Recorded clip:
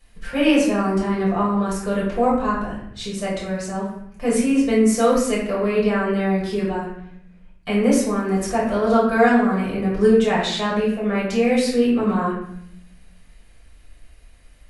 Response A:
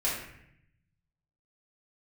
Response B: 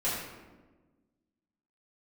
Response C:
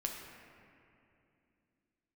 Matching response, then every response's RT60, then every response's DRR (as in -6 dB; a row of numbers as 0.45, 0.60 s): A; 0.75, 1.3, 2.7 s; -7.5, -10.0, 0.5 dB